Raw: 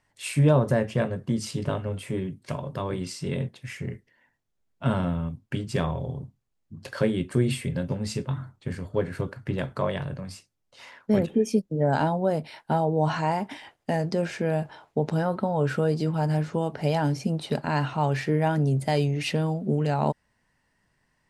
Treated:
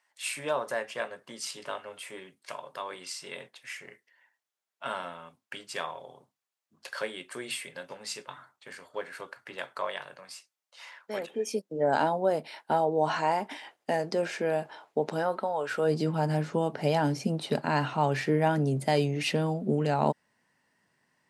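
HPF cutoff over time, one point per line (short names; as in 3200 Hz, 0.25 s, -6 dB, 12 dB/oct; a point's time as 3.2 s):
11.13 s 830 Hz
11.88 s 330 Hz
15.15 s 330 Hz
15.71 s 730 Hz
15.93 s 180 Hz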